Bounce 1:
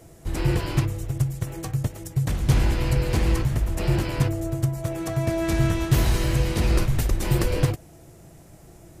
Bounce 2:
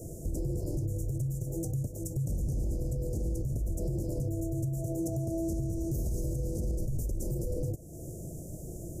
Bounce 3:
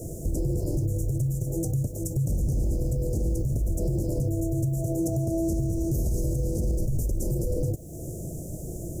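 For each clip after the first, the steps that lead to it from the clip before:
elliptic band-stop 570–6400 Hz, stop band 40 dB; compressor 2.5:1, threshold -37 dBFS, peak gain reduction 15 dB; limiter -32.5 dBFS, peak gain reduction 10.5 dB; gain +7.5 dB
added noise violet -70 dBFS; gain +6 dB

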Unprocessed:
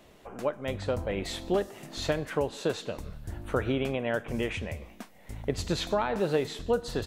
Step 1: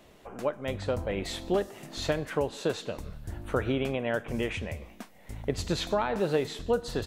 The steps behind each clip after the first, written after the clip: nothing audible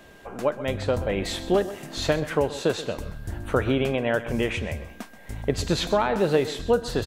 whine 1600 Hz -59 dBFS; echo 0.13 s -15 dB; gain +5.5 dB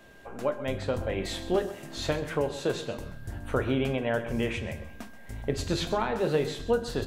reverb, pre-delay 7 ms, DRR 8.5 dB; gain -5.5 dB

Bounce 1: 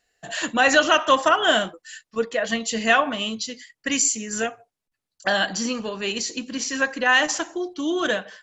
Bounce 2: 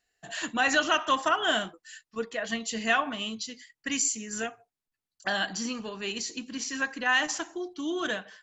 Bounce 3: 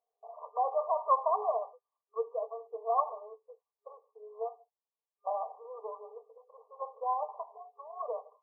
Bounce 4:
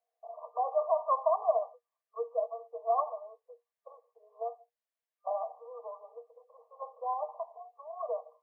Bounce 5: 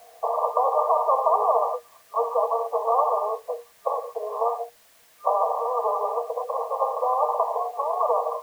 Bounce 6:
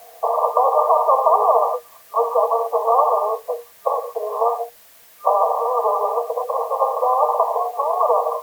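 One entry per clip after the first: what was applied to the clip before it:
bell 540 Hz -7.5 dB 0.34 oct; gain -6.5 dB
FFT band-pass 410–1200 Hz
rippled Chebyshev high-pass 460 Hz, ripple 9 dB; gain +5.5 dB
spectral compressor 4:1; gain +8.5 dB
bell 15000 Hz +7.5 dB 0.54 oct; gain +5.5 dB

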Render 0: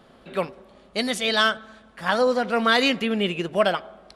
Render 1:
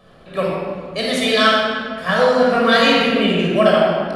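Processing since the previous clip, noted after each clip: shoebox room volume 3200 m³, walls mixed, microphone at 5.9 m; gain -1.5 dB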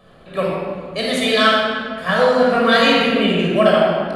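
bell 5500 Hz -7.5 dB 0.22 oct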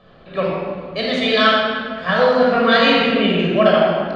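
LPF 5200 Hz 24 dB/oct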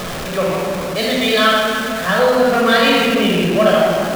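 zero-crossing step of -18.5 dBFS; gain -1 dB

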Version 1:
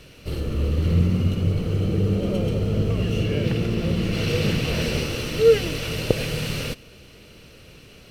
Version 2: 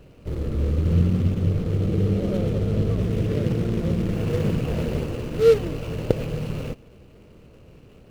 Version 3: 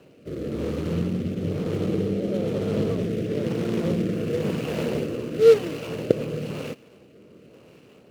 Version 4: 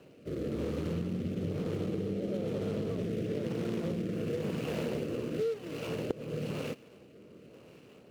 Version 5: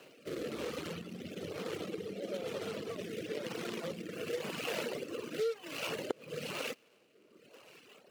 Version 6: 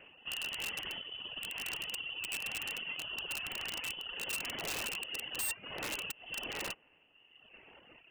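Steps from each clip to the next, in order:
median filter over 25 samples
HPF 210 Hz 12 dB/oct; rotary speaker horn 1 Hz; gain +4 dB
compressor 16:1, threshold -26 dBFS, peak gain reduction 17.5 dB; gain -3.5 dB
reverb removal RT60 1.9 s; HPF 1200 Hz 6 dB/oct; gain +8.5 dB
inverted band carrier 3200 Hz; wrapped overs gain 31 dB

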